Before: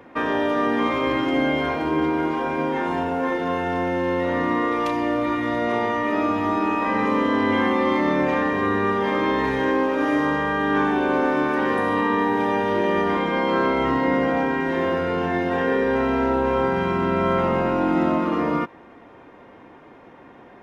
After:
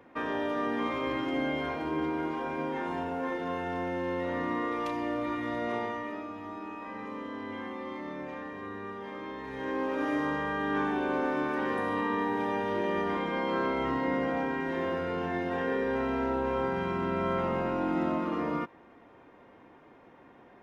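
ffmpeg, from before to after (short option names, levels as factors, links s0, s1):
-af "afade=t=out:st=5.75:d=0.5:silence=0.354813,afade=t=in:st=9.46:d=0.47:silence=0.334965"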